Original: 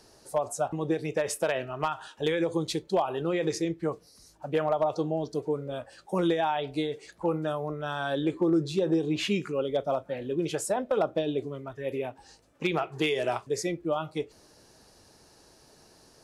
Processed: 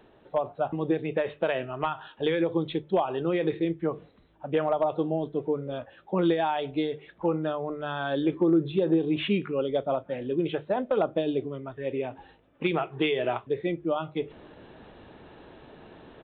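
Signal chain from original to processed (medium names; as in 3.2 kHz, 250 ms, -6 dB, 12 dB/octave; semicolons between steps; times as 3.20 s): resampled via 8 kHz; reverse; upward compressor, threshold -40 dBFS; reverse; peaking EQ 250 Hz +3 dB 1.6 oct; hum notches 50/100/150 Hz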